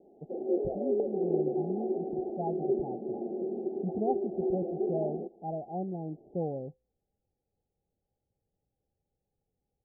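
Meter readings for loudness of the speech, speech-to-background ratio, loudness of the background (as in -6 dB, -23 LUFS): -38.0 LUFS, -5.0 dB, -33.0 LUFS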